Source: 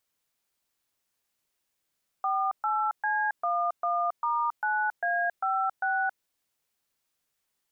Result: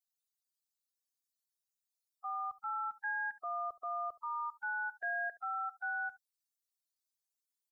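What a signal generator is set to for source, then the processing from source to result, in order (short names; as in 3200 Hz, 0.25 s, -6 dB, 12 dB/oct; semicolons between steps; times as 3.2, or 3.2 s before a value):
DTMF "48C11*9A56", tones 0.273 s, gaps 0.125 s, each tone -27 dBFS
per-bin expansion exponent 3; bell 830 Hz -13.5 dB 1.7 oct; echo 72 ms -20 dB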